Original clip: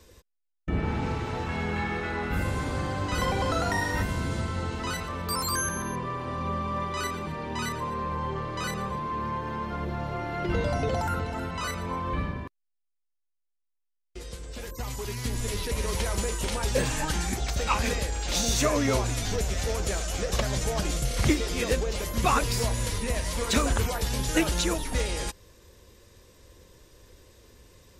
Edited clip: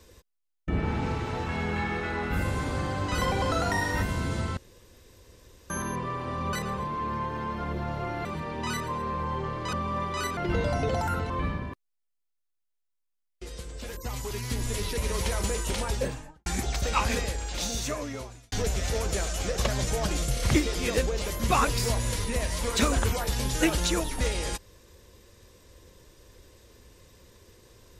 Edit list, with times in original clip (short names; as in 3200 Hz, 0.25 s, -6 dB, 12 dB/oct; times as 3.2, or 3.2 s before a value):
4.57–5.7 room tone
6.53–7.17 swap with 8.65–10.37
11.3–12.04 cut
16.5–17.2 studio fade out
17.79–19.26 fade out